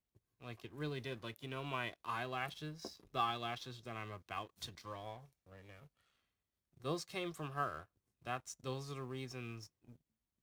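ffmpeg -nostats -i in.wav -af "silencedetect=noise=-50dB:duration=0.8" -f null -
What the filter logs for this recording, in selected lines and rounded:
silence_start: 5.83
silence_end: 6.82 | silence_duration: 0.99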